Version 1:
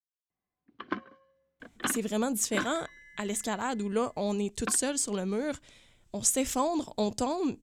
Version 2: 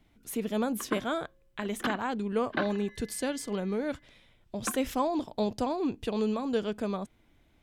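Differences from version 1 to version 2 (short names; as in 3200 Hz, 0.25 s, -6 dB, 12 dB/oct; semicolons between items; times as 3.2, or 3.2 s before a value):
speech: entry -1.60 s; master: add bell 7500 Hz -14.5 dB 0.83 oct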